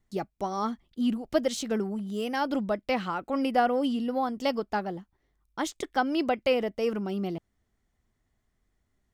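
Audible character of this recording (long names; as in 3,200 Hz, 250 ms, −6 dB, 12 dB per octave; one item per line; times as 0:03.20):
background noise floor −76 dBFS
spectral slope −4.0 dB per octave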